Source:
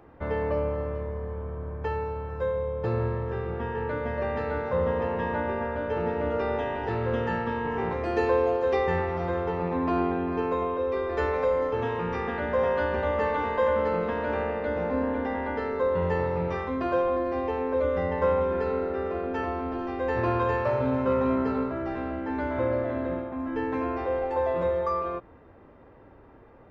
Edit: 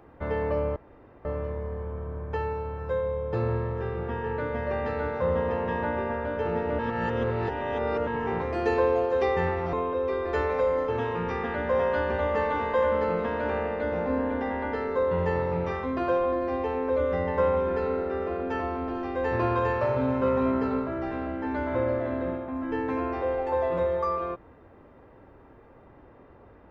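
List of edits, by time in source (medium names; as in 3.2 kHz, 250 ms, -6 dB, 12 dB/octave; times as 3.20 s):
0.76 s: insert room tone 0.49 s
6.30–7.58 s: reverse
9.24–10.57 s: delete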